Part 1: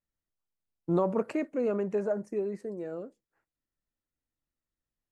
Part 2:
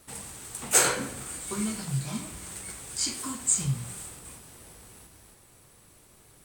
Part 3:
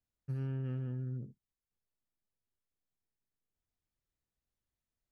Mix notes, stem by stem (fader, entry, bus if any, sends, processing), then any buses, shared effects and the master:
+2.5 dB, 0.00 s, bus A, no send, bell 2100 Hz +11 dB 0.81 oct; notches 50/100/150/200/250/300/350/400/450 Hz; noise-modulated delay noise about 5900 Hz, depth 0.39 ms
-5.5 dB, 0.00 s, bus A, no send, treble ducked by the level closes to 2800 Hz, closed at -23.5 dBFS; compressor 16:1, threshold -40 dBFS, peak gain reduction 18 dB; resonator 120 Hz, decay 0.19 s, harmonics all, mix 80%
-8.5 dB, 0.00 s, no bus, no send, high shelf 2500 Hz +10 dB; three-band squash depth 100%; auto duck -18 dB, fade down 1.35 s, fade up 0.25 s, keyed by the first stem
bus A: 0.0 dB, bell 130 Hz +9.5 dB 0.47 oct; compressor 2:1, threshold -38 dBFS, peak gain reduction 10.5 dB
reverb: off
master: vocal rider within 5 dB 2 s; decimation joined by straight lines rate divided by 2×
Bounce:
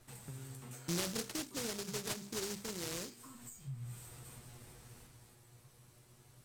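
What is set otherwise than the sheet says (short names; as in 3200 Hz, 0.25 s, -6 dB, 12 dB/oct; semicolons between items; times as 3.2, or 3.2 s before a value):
stem 1 +2.5 dB -> -5.0 dB; stem 2: missing treble ducked by the level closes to 2800 Hz, closed at -23.5 dBFS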